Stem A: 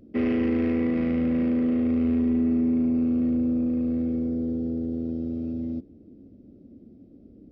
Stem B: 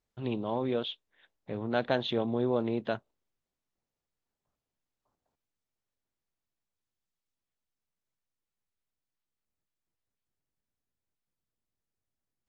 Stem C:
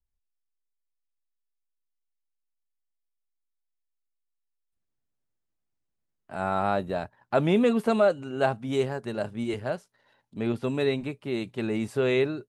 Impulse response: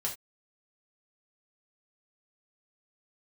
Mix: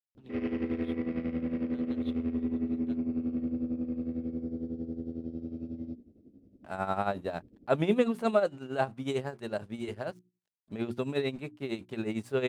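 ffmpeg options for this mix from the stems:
-filter_complex "[0:a]adelay=150,volume=-5dB[link_01];[1:a]acrossover=split=170|3000[link_02][link_03][link_04];[link_03]acompressor=threshold=-41dB:ratio=2.5[link_05];[link_02][link_05][link_04]amix=inputs=3:normalize=0,aeval=exprs='sgn(val(0))*max(abs(val(0))-0.00211,0)':channel_layout=same,volume=-13dB[link_06];[2:a]aeval=exprs='sgn(val(0))*max(abs(val(0))-0.00158,0)':channel_layout=same,adelay=350,volume=-1.5dB[link_07];[link_01][link_06][link_07]amix=inputs=3:normalize=0,bandreject=frequency=60:width_type=h:width=6,bandreject=frequency=120:width_type=h:width=6,bandreject=frequency=180:width_type=h:width=6,bandreject=frequency=240:width_type=h:width=6,bandreject=frequency=300:width_type=h:width=6,bandreject=frequency=360:width_type=h:width=6,tremolo=f=11:d=0.71"

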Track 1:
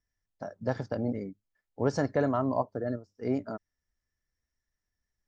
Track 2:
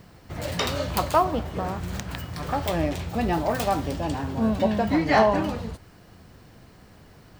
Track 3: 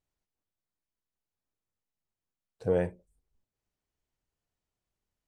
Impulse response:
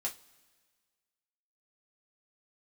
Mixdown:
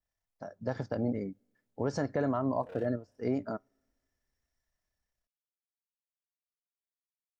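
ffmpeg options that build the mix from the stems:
-filter_complex "[0:a]dynaudnorm=framelen=270:gausssize=5:maxgain=7dB,volume=-6.5dB,asplit=2[link_01][link_02];[link_02]volume=-22dB[link_03];[2:a]lowshelf=frequency=440:width_type=q:width=3:gain=-9.5,tremolo=f=33:d=0.947,asoftclip=type=hard:threshold=-36.5dB,volume=-4dB,asplit=2[link_04][link_05];[link_05]volume=-9dB[link_06];[link_04]alimiter=level_in=27dB:limit=-24dB:level=0:latency=1,volume=-27dB,volume=0dB[link_07];[3:a]atrim=start_sample=2205[link_08];[link_03][link_06]amix=inputs=2:normalize=0[link_09];[link_09][link_08]afir=irnorm=-1:irlink=0[link_10];[link_01][link_07][link_10]amix=inputs=3:normalize=0,adynamicequalizer=threshold=0.00158:dfrequency=5800:dqfactor=0.84:tfrequency=5800:tqfactor=0.84:attack=5:release=100:ratio=0.375:range=2.5:mode=cutabove:tftype=bell,alimiter=limit=-20.5dB:level=0:latency=1:release=106"

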